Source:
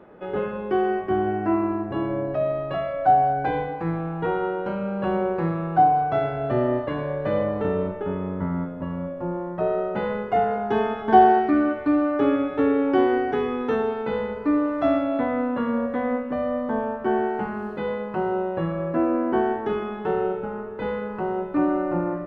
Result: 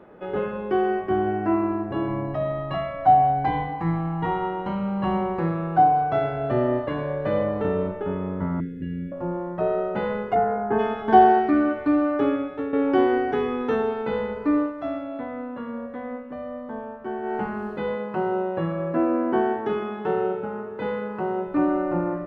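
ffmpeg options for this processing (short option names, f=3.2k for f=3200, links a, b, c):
-filter_complex "[0:a]asettb=1/sr,asplit=3[a][b][c];[a]atrim=end=2.084[d];[b]atrim=start=2.08:end=5.39,asetpts=PTS-STARTPTS,afade=t=in:d=0.004:c=qsin,afade=t=out:st=3.306:d=0.004:c=qsin,aecho=1:1:1:0.65,atrim=end_sample=145971[e];[c]atrim=start=5.386[f];[d][e]acrossfade=d=0.004:c1=hsin:c2=qsin[g];[g][f]acrossfade=d=0.004:c1=qsin:c2=hsin,asettb=1/sr,asplit=3[h][i][j];[h]atrim=end=8.604[k];[i]atrim=start=8.6:end=9.12,asetpts=PTS-STARTPTS,afade=t=in:d=0.004:c=qsin,afade=t=out:st=0.516:d=0.004:c=qsin,asuperstop=centerf=870:order=12:qfactor=0.74[l];[j]atrim=start=9.116[m];[k][l]acrossfade=d=0.004:c1=hsin:c2=qsin[n];[n][m]acrossfade=d=0.004:c1=qsin:c2=hsin,asplit=3[o][p][q];[o]afade=t=out:st=10.34:d=0.02[r];[p]lowpass=f=1.9k:w=0.5412,lowpass=f=1.9k:w=1.3066,afade=t=in:st=10.34:d=0.02,afade=t=out:st=10.78:d=0.02[s];[q]afade=t=in:st=10.78:d=0.02[t];[r][s][t]amix=inputs=3:normalize=0,asettb=1/sr,asplit=3[u][v][w];[u]atrim=end=17.954[x];[v]atrim=start=17.95:end=21.47,asetpts=PTS-STARTPTS,afade=t=in:d=0.004:c=qsin,afade=t=out:st=3.516:d=0.004:c=qsin,highpass=95[y];[w]atrim=start=21.466[z];[x][y]acrossfade=d=0.004:c1=hsin:c2=qsin[aa];[aa][z]acrossfade=d=0.004:c1=qsin:c2=hsin,asplit=4[ab][ac][ad][ae];[ab]atrim=end=12.73,asetpts=PTS-STARTPTS,afade=t=out:st=12.12:d=0.61:silence=0.266073[af];[ac]atrim=start=12.73:end=14.73,asetpts=PTS-STARTPTS,afade=t=in:d=0.004:c=hsin:silence=0.266073,afade=t=out:st=1.88:d=0.12:silence=0.375837[ag];[ad]atrim=start=14.73:end=17.22,asetpts=PTS-STARTPTS,volume=-8.5dB[ah];[ae]atrim=start=17.22,asetpts=PTS-STARTPTS,afade=t=in:d=0.12:silence=0.375837[ai];[af][ag][ah][ai]concat=n=4:v=0:a=1"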